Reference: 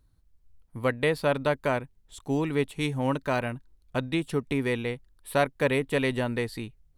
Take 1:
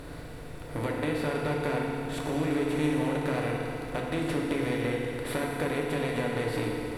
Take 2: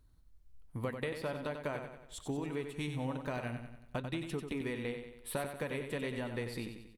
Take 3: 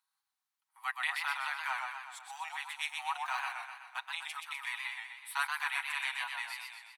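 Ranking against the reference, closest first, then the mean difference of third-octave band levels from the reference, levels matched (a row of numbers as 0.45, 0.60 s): 2, 1, 3; 6.5, 10.0, 20.5 dB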